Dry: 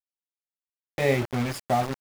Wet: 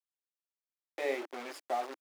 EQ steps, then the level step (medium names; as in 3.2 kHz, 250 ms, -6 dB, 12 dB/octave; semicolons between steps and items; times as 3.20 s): Chebyshev high-pass 310 Hz, order 4; treble shelf 9.2 kHz -6.5 dB; -9.0 dB